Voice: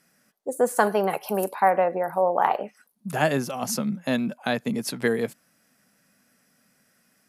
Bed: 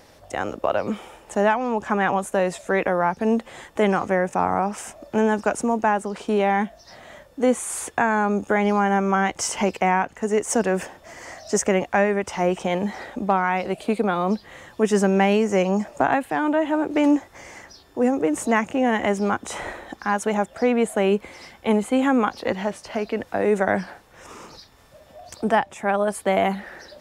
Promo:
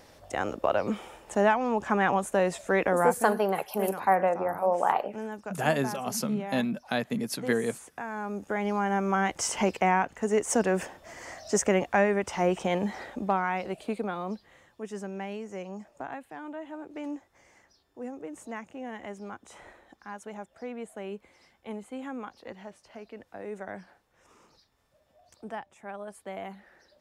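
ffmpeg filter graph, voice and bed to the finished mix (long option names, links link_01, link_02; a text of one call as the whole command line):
ffmpeg -i stem1.wav -i stem2.wav -filter_complex "[0:a]adelay=2450,volume=-3.5dB[link_01];[1:a]volume=9.5dB,afade=type=out:start_time=3.05:duration=0.25:silence=0.211349,afade=type=in:start_time=8.02:duration=1.49:silence=0.223872,afade=type=out:start_time=12.72:duration=2.08:silence=0.188365[link_02];[link_01][link_02]amix=inputs=2:normalize=0" out.wav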